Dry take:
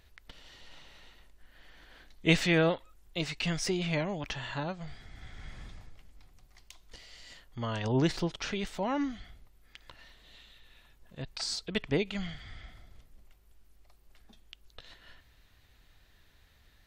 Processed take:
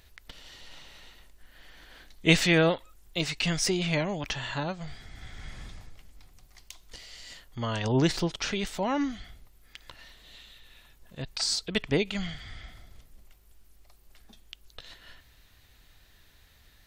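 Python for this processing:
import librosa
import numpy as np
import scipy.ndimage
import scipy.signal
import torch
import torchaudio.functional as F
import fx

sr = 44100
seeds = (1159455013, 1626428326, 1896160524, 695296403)

y = fx.high_shelf(x, sr, hz=4500.0, db=6.5)
y = y * 10.0 ** (3.0 / 20.0)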